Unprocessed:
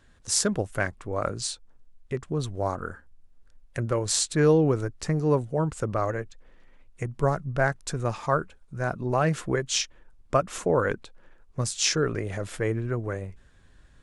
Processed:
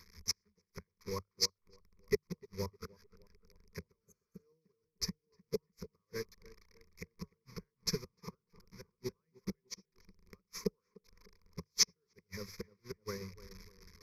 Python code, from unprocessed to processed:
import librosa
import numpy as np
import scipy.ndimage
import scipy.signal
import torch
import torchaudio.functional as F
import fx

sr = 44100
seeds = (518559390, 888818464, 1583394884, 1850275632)

y = fx.delta_mod(x, sr, bps=64000, step_db=-33.5)
y = fx.high_shelf(y, sr, hz=2800.0, db=6.5)
y = fx.fixed_phaser(y, sr, hz=2800.0, stages=6)
y = fx.gate_flip(y, sr, shuts_db=-20.0, range_db=-27)
y = fx.hum_notches(y, sr, base_hz=50, count=3)
y = fx.echo_tape(y, sr, ms=303, feedback_pct=70, wet_db=-6.5, lp_hz=1300.0, drive_db=23.0, wow_cents=32)
y = fx.spec_repair(y, sr, seeds[0], start_s=4.04, length_s=0.37, low_hz=570.0, high_hz=6200.0, source='after')
y = fx.ripple_eq(y, sr, per_octave=0.83, db=16)
y = fx.upward_expand(y, sr, threshold_db=-47.0, expansion=2.5)
y = F.gain(torch.from_numpy(y), 1.5).numpy()